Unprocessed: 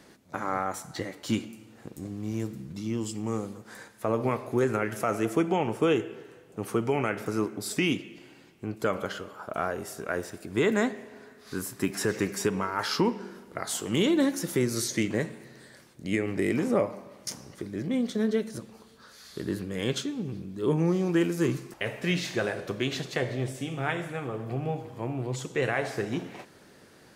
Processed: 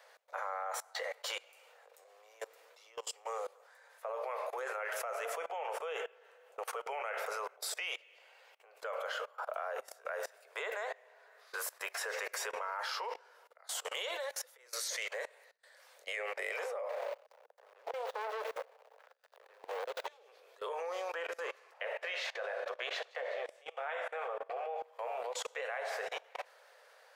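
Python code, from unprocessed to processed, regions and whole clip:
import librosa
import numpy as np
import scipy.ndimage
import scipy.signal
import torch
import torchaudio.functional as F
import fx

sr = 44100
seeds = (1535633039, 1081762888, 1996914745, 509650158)

y = fx.chain(x, sr, fx.high_shelf(hz=2300.0, db=4.5),
    fx.tremolo_abs(hz=1.0), at=(13.08, 16.08))
y = fx.chain(y, sr, fx.median_filter(points=41),
    fx.auto_swell(attack_ms=240.0),
    fx.leveller(passes=3), at=(16.89, 20.07))
y = fx.chain(y, sr, fx.lowpass(hz=2600.0, slope=6),
    fx.echo_wet_highpass(ms=63, feedback_pct=66, hz=1700.0, wet_db=-18), at=(21.14, 24.83))
y = scipy.signal.sosfilt(scipy.signal.butter(12, 490.0, 'highpass', fs=sr, output='sos'), y)
y = fx.peak_eq(y, sr, hz=8900.0, db=-8.5, octaves=2.2)
y = fx.level_steps(y, sr, step_db=23)
y = y * librosa.db_to_amplitude(7.5)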